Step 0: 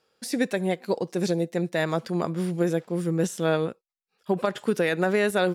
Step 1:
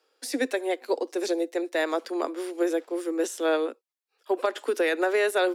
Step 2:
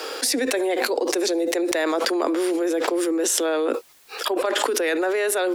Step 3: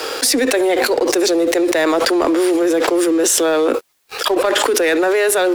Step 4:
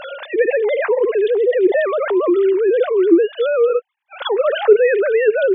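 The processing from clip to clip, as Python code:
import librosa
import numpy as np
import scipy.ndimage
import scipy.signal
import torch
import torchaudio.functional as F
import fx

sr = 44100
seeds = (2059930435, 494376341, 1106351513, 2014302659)

y1 = scipy.signal.sosfilt(scipy.signal.butter(16, 260.0, 'highpass', fs=sr, output='sos'), x)
y2 = fx.env_flatten(y1, sr, amount_pct=100)
y2 = F.gain(torch.from_numpy(y2), -1.0).numpy()
y3 = fx.leveller(y2, sr, passes=3)
y3 = F.gain(torch.from_numpy(y3), -3.5).numpy()
y4 = fx.sine_speech(y3, sr)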